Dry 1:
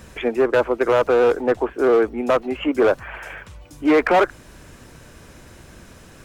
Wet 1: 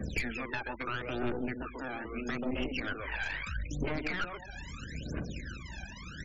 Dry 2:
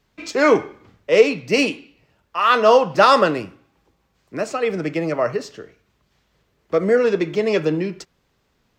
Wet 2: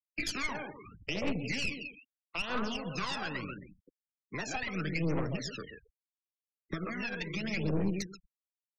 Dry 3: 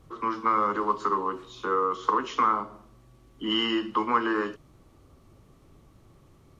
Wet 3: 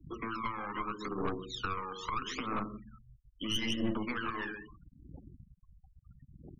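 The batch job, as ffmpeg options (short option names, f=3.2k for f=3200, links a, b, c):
-filter_complex "[0:a]acompressor=threshold=-31dB:ratio=2.5,highpass=57,asplit=2[a][b];[b]adelay=132,lowpass=f=1.8k:p=1,volume=-6.5dB,asplit=2[c][d];[d]adelay=132,lowpass=f=1.8k:p=1,volume=0.25,asplit=2[e][f];[f]adelay=132,lowpass=f=1.8k:p=1,volume=0.25[g];[a][c][e][g]amix=inputs=4:normalize=0,afftfilt=real='re*lt(hypot(re,im),0.282)':imag='im*lt(hypot(re,im),0.282)':win_size=1024:overlap=0.75,aresample=16000,aeval=exprs='val(0)*gte(abs(val(0)),0.002)':c=same,aresample=44100,adynamicequalizer=threshold=0.00501:dfrequency=810:dqfactor=2:tfrequency=810:tqfactor=2:attack=5:release=100:ratio=0.375:range=3.5:mode=cutabove:tftype=bell,aphaser=in_gain=1:out_gain=1:delay=1.3:decay=0.77:speed=0.77:type=triangular,equalizer=f=100:t=o:w=0.67:g=-8,equalizer=f=400:t=o:w=0.67:g=-4,equalizer=f=1k:t=o:w=0.67:g=-5,equalizer=f=2.5k:t=o:w=0.67:g=3,aeval=exprs='(tanh(20*val(0)+0.7)-tanh(0.7))/20':c=same,afftfilt=real='re*gte(hypot(re,im),0.00501)':imag='im*gte(hypot(re,im),0.00501)':win_size=1024:overlap=0.75,acrossover=split=180[h][i];[i]acompressor=threshold=-37dB:ratio=3[j];[h][j]amix=inputs=2:normalize=0,volume=3.5dB"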